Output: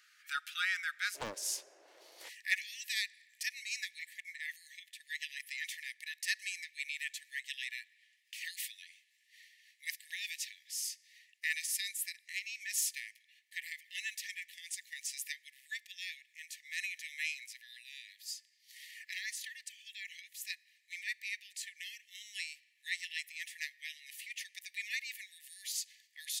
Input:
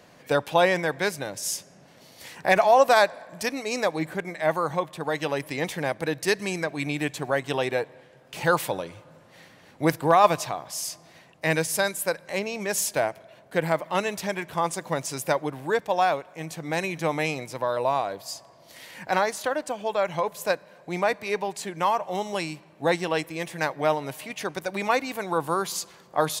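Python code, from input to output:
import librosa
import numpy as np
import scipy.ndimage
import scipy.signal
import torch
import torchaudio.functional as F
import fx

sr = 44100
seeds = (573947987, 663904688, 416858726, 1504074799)

y = fx.brickwall_highpass(x, sr, low_hz=fx.steps((0.0, 1200.0), (1.14, 300.0), (2.28, 1700.0)))
y = fx.doppler_dist(y, sr, depth_ms=0.62)
y = F.gain(torch.from_numpy(y), -6.5).numpy()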